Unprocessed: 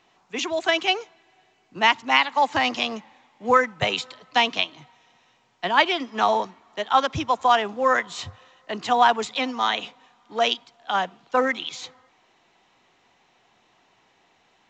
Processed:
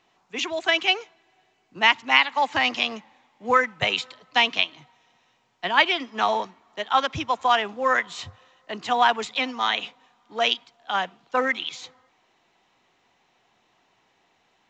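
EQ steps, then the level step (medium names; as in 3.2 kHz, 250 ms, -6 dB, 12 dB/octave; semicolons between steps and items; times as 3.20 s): dynamic bell 2.4 kHz, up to +6 dB, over -35 dBFS, Q 0.84; -3.5 dB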